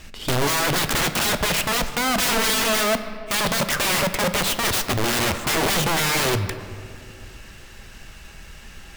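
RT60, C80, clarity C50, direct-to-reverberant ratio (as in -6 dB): 2.4 s, 11.5 dB, 11.0 dB, 9.0 dB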